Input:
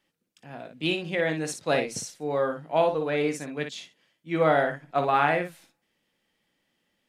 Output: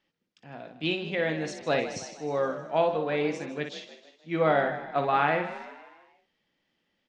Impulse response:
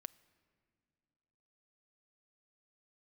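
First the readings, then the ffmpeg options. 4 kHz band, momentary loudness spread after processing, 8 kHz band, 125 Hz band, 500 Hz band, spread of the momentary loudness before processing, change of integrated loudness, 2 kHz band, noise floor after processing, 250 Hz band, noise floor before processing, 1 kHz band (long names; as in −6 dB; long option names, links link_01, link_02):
−2.0 dB, 18 LU, −7.5 dB, −2.0 dB, −1.5 dB, 13 LU, −2.0 dB, −1.5 dB, −78 dBFS, −1.5 dB, −77 dBFS, −1.5 dB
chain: -filter_complex "[0:a]lowpass=frequency=5900:width=0.5412,lowpass=frequency=5900:width=1.3066,asplit=2[link_01][link_02];[link_02]asplit=5[link_03][link_04][link_05][link_06][link_07];[link_03]adelay=156,afreqshift=42,volume=-13dB[link_08];[link_04]adelay=312,afreqshift=84,volume=-19dB[link_09];[link_05]adelay=468,afreqshift=126,volume=-25dB[link_10];[link_06]adelay=624,afreqshift=168,volume=-31.1dB[link_11];[link_07]adelay=780,afreqshift=210,volume=-37.1dB[link_12];[link_08][link_09][link_10][link_11][link_12]amix=inputs=5:normalize=0[link_13];[link_01][link_13]amix=inputs=2:normalize=0,volume=-2dB"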